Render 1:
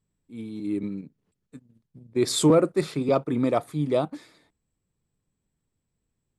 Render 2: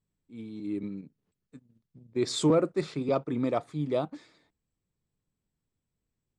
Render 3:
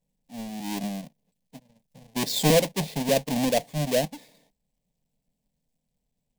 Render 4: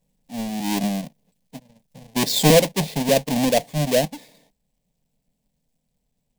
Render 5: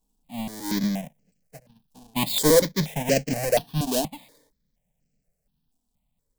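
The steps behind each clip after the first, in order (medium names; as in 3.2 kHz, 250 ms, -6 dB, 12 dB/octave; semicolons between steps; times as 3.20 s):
low-pass 7.7 kHz 24 dB/octave; trim -5 dB
square wave that keeps the level; static phaser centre 350 Hz, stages 6; trim +3 dB
gain riding within 3 dB 2 s; trim +5 dB
stepped phaser 4.2 Hz 550–3600 Hz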